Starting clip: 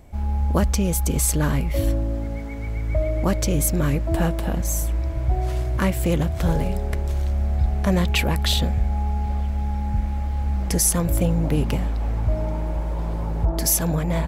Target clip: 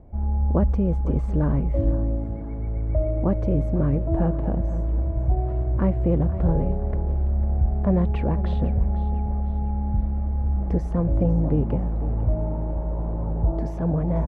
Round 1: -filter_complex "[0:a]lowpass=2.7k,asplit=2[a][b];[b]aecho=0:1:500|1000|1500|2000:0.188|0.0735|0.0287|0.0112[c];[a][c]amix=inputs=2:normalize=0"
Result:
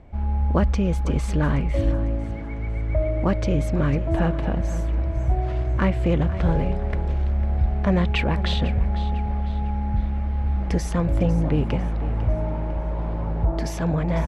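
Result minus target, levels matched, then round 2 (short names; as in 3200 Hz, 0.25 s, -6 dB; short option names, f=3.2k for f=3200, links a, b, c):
2000 Hz band +14.0 dB
-filter_complex "[0:a]lowpass=770,asplit=2[a][b];[b]aecho=0:1:500|1000|1500|2000:0.188|0.0735|0.0287|0.0112[c];[a][c]amix=inputs=2:normalize=0"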